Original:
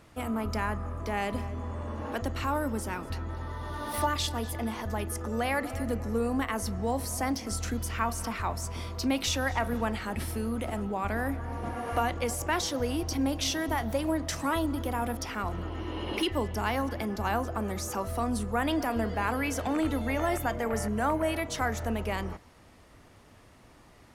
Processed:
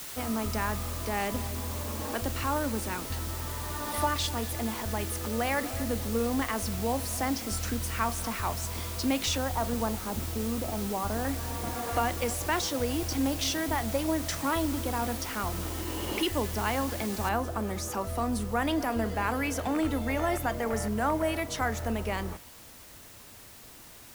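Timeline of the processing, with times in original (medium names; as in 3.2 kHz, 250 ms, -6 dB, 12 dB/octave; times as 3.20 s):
0.64–4.03 s: short-mantissa float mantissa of 4-bit
9.38–11.25 s: low-pass 1.3 kHz 24 dB/octave
17.29 s: noise floor step -41 dB -51 dB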